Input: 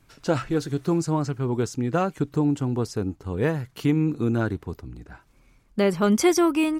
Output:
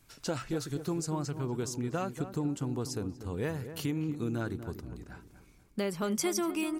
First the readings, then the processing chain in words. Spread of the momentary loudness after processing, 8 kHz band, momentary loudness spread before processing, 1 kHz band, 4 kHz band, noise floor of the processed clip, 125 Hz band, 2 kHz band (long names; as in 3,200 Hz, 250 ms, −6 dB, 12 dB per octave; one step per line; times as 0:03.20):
11 LU, −3.5 dB, 11 LU, −10.5 dB, −5.5 dB, −60 dBFS, −9.0 dB, −9.5 dB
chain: high-shelf EQ 4,200 Hz +10.5 dB
downward compressor 2 to 1, threshold −28 dBFS, peak gain reduction 8.5 dB
feedback echo with a low-pass in the loop 241 ms, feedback 42%, low-pass 1,300 Hz, level −10 dB
level −5.5 dB